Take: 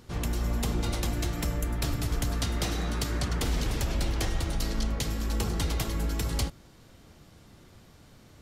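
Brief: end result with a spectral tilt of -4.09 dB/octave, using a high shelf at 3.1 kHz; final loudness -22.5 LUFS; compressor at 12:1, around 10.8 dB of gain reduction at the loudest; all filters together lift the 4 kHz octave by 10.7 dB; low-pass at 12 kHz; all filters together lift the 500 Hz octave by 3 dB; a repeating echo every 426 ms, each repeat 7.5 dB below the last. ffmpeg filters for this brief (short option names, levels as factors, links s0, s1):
-af "lowpass=12000,equalizer=f=500:t=o:g=3.5,highshelf=f=3100:g=6,equalizer=f=4000:t=o:g=8.5,acompressor=threshold=0.0251:ratio=12,aecho=1:1:426|852|1278|1704|2130:0.422|0.177|0.0744|0.0312|0.0131,volume=4.73"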